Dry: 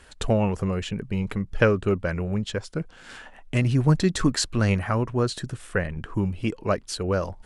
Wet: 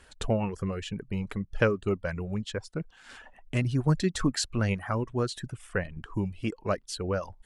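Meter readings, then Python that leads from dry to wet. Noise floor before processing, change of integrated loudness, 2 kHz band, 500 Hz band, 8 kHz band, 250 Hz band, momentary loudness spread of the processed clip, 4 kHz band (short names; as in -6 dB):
-50 dBFS, -5.5 dB, -5.0 dB, -5.0 dB, -4.5 dB, -5.5 dB, 9 LU, -4.5 dB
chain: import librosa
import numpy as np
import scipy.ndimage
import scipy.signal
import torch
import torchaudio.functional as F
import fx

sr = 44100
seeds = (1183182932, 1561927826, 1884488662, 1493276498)

y = fx.dereverb_blind(x, sr, rt60_s=0.67)
y = y * 10.0 ** (-4.5 / 20.0)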